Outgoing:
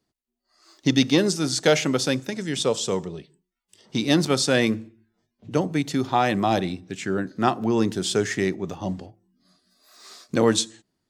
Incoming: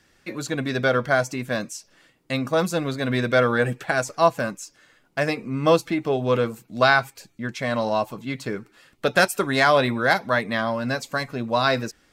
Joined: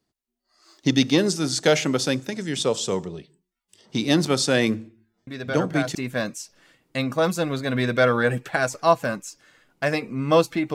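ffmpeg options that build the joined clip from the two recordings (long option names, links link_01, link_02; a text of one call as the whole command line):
ffmpeg -i cue0.wav -i cue1.wav -filter_complex "[1:a]asplit=2[link_01][link_02];[0:a]apad=whole_dur=10.74,atrim=end=10.74,atrim=end=5.952[link_03];[link_02]atrim=start=1.298:end=6.09[link_04];[link_01]atrim=start=0.62:end=1.3,asetpts=PTS-STARTPTS,volume=-8dB,afade=type=in:duration=0.004:curve=hsin,afade=type=out:start_time=0.676:duration=0.004:curve=hsin,adelay=5270[link_05];[link_03][link_04]acrossfade=duration=0.004:curve1=hsin:curve2=hsin[link_06];[link_06][link_05]amix=inputs=2:normalize=0" out.wav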